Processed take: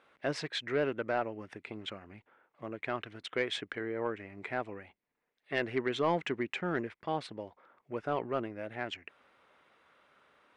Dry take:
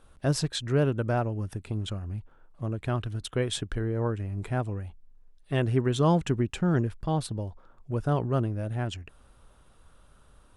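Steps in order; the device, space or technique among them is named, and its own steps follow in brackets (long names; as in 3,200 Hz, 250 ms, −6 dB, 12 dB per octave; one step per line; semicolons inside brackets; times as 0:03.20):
intercom (band-pass filter 340–3,800 Hz; parametric band 2,100 Hz +12 dB 0.51 octaves; soft clipping −16 dBFS, distortion −20 dB)
level −2 dB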